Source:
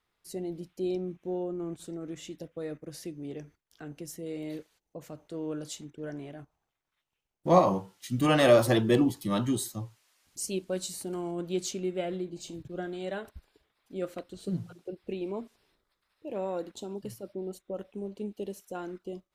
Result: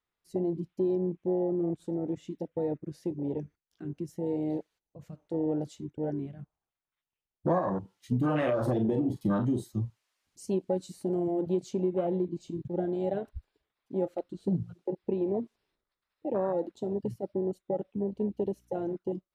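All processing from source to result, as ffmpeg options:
-filter_complex "[0:a]asettb=1/sr,asplit=3[a][b][c];[a]atrim=end=8.104[d];[b]atrim=start=8.1:end=9.65,asetpts=PTS-STARTPTS,afade=t=in:d=0.004:c=qsin,afade=t=out:st=1.546:d=0.004:c=qsin,acompressor=threshold=-23dB:ratio=12:attack=3.2:release=140:knee=1:detection=peak,asplit=2[e][f];[f]adelay=40,volume=-8dB[g];[e][g]amix=inputs=2:normalize=0,atrim=end_sample=68355[h];[c]atrim=start=9.646[i];[d][h]acrossfade=d=0.004:c1=hsin:c2=qsin[j];[j][i]acrossfade=d=0.004:c1=qsin:c2=hsin,asettb=1/sr,asplit=3[k][l][m];[k]atrim=end=18.074[n];[l]atrim=start=18.07:end=18.96,asetpts=PTS-STARTPTS,afade=t=in:d=0.004:c=qsin,afade=t=out:st=0.886:d=0.004:c=qsin,bandreject=f=7.6k:w=13,aeval=exprs='val(0)+0.00141*(sin(2*PI*60*n/s)+sin(2*PI*2*60*n/s)/2+sin(2*PI*3*60*n/s)/3+sin(2*PI*4*60*n/s)/4+sin(2*PI*5*60*n/s)/5)':c=same[o];[m]atrim=start=18.956[p];[n][o]acrossfade=d=0.004:c1=hsin:c2=qsin[q];[q][p]acrossfade=d=0.004:c1=qsin:c2=hsin,afwtdn=0.0251,highshelf=f=7.5k:g=-8,acompressor=threshold=-31dB:ratio=8,volume=7dB"

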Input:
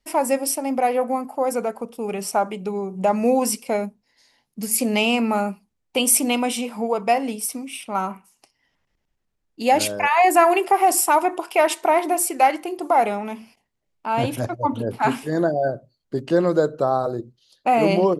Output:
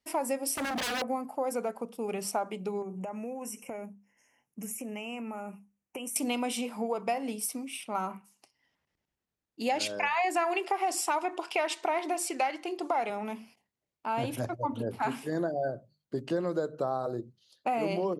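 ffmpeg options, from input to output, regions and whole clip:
-filter_complex "[0:a]asettb=1/sr,asplit=3[a][b][c];[a]atrim=end=0.554[d];[b]atrim=start=0.55:end=1.02,asetpts=PTS-STARTPTS,afade=t=in:d=0.004:c=qsin,afade=t=out:st=0.466:d=0.004:c=qsin,highpass=f=43:w=0.5412,highpass=f=43:w=1.3066,acontrast=87,aeval=exprs='0.0944*(abs(mod(val(0)/0.0944+3,4)-2)-1)':c=same[e];[c]atrim=start=1.016[f];[d][e]acrossfade=d=0.004:c1=hsin:c2=qsin[g];[g][f]acrossfade=d=0.004:c1=qsin:c2=hsin,asettb=1/sr,asplit=3[h][i][j];[h]atrim=end=2.824[k];[i]atrim=start=2.82:end=6.16,asetpts=PTS-STARTPTS,afade=t=in:d=0.004:c=qsin,afade=t=out:st=3.336:d=0.004:c=qsin,acompressor=threshold=-28dB:ratio=16:attack=3.2:release=140:knee=1:detection=peak,asuperstop=centerf=4100:order=12:qfactor=1.7[l];[j]atrim=start=6.156[m];[k][l]acrossfade=d=0.004:c1=hsin:c2=qsin[n];[n][m]acrossfade=d=0.004:c1=qsin:c2=hsin,asettb=1/sr,asplit=3[o][p][q];[o]atrim=end=9.694[r];[p]atrim=start=9.69:end=13.1,asetpts=PTS-STARTPTS,afade=t=in:d=0.004:c=qsin,afade=t=out:st=3.406:d=0.004:c=qsin,highpass=100,lowpass=4.6k,highshelf=f=2.9k:g=12[s];[q]atrim=start=13.096[t];[r][s]acrossfade=d=0.004:c1=hsin:c2=qsin[u];[u][t]acrossfade=d=0.004:c1=qsin:c2=hsin,acompressor=threshold=-22dB:ratio=3,highpass=69,bandreject=f=50:t=h:w=6,bandreject=f=100:t=h:w=6,bandreject=f=150:t=h:w=6,bandreject=f=200:t=h:w=6,volume=-6dB"

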